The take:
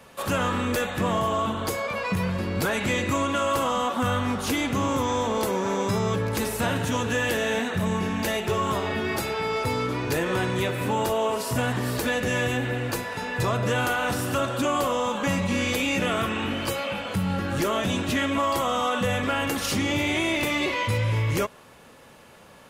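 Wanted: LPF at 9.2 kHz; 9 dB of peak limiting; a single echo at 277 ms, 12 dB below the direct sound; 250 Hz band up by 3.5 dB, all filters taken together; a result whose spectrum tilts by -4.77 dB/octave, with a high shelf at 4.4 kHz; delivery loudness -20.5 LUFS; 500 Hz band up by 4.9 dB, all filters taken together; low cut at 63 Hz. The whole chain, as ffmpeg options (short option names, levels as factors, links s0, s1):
-af "highpass=63,lowpass=9200,equalizer=f=250:t=o:g=3,equalizer=f=500:t=o:g=5,highshelf=f=4400:g=-4.5,alimiter=limit=0.106:level=0:latency=1,aecho=1:1:277:0.251,volume=2.24"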